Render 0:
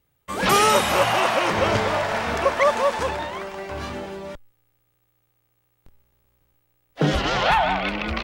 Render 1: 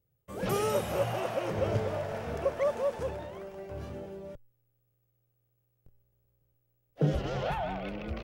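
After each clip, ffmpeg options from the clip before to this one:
ffmpeg -i in.wav -af "equalizer=frequency=125:width_type=o:width=1:gain=8,equalizer=frequency=250:width_type=o:width=1:gain=-4,equalizer=frequency=500:width_type=o:width=1:gain=5,equalizer=frequency=1000:width_type=o:width=1:gain=-9,equalizer=frequency=2000:width_type=o:width=1:gain=-7,equalizer=frequency=4000:width_type=o:width=1:gain=-9,equalizer=frequency=8000:width_type=o:width=1:gain=-6,volume=-9dB" out.wav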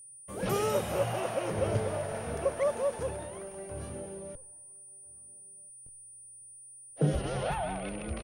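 ffmpeg -i in.wav -filter_complex "[0:a]aeval=exprs='val(0)+0.00398*sin(2*PI*9300*n/s)':channel_layout=same,asplit=2[link_01][link_02];[link_02]adelay=1341,volume=-27dB,highshelf=frequency=4000:gain=-30.2[link_03];[link_01][link_03]amix=inputs=2:normalize=0" out.wav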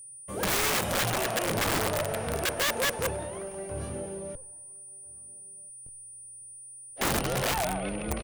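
ffmpeg -i in.wav -af "aeval=exprs='(mod(20*val(0)+1,2)-1)/20':channel_layout=same,volume=4.5dB" out.wav

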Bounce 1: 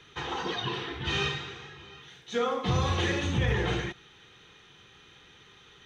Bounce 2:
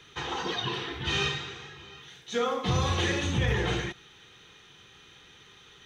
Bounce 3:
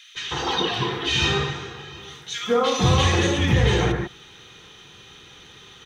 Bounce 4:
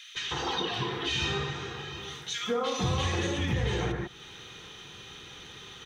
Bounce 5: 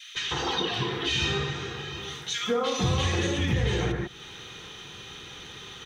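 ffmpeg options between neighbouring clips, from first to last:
ffmpeg -i in.wav -af "highshelf=frequency=5300:gain=7" out.wav
ffmpeg -i in.wav -filter_complex "[0:a]acrossover=split=1800[link_01][link_02];[link_01]adelay=150[link_03];[link_03][link_02]amix=inputs=2:normalize=0,volume=8.5dB" out.wav
ffmpeg -i in.wav -af "acompressor=threshold=-34dB:ratio=2" out.wav
ffmpeg -i in.wav -af "adynamicequalizer=threshold=0.00447:dfrequency=930:dqfactor=1.4:tfrequency=930:tqfactor=1.4:attack=5:release=100:ratio=0.375:range=2:mode=cutabove:tftype=bell,volume=3.5dB" out.wav

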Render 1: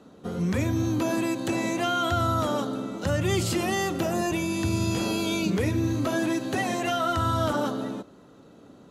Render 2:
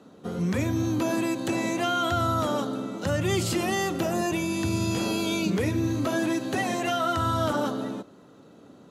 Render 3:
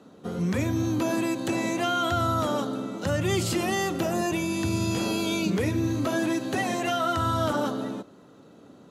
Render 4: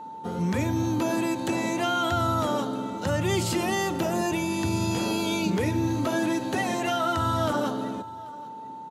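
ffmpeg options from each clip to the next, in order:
ffmpeg -i in.wav -af "highpass=87" out.wav
ffmpeg -i in.wav -af anull out.wav
ffmpeg -i in.wav -af "aecho=1:1:787:0.0794,aeval=exprs='val(0)+0.0141*sin(2*PI*890*n/s)':channel_layout=same" out.wav

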